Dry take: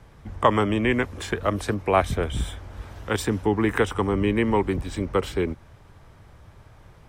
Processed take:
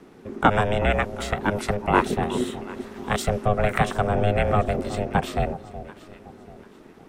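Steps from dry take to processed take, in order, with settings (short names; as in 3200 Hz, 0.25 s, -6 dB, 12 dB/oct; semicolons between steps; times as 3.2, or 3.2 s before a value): echo with dull and thin repeats by turns 0.369 s, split 800 Hz, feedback 56%, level -13 dB; ring modulator 310 Hz; gain +3.5 dB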